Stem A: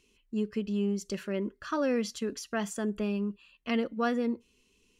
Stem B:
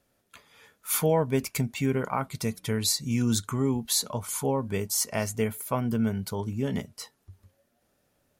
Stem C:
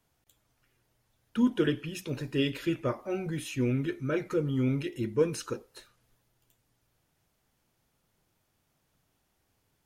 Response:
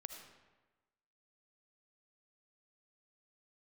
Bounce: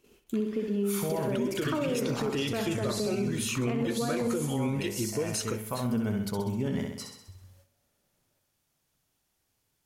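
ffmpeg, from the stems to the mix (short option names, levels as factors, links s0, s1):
-filter_complex "[0:a]equalizer=f=440:t=o:w=2.7:g=13,acompressor=threshold=0.0398:ratio=3,volume=0.944,asplit=2[s0][s1];[s1]volume=0.501[s2];[1:a]alimiter=limit=0.106:level=0:latency=1,volume=0.891,asplit=2[s3][s4];[s4]volume=0.562[s5];[2:a]highshelf=f=3700:g=11.5,acompressor=threshold=0.0447:ratio=6,volume=1.33,asplit=2[s6][s7];[s7]apad=whole_len=370104[s8];[s3][s8]sidechaincompress=threshold=0.00708:ratio=8:attack=16:release=143[s9];[s2][s5]amix=inputs=2:normalize=0,aecho=0:1:65|130|195|260|325|390|455|520:1|0.56|0.314|0.176|0.0983|0.0551|0.0308|0.0173[s10];[s0][s9][s6][s10]amix=inputs=4:normalize=0,agate=range=0.398:threshold=0.00112:ratio=16:detection=peak,highshelf=f=10000:g=-5.5,alimiter=limit=0.0891:level=0:latency=1:release=52"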